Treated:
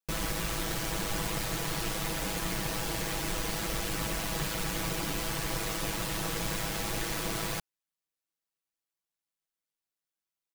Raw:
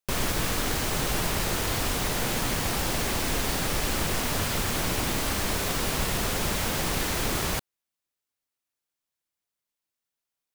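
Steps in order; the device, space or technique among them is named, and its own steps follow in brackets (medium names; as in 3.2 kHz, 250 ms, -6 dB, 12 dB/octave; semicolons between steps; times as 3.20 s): ring-modulated robot voice (ring modulator 53 Hz; comb 6.1 ms, depth 99%); trim -5.5 dB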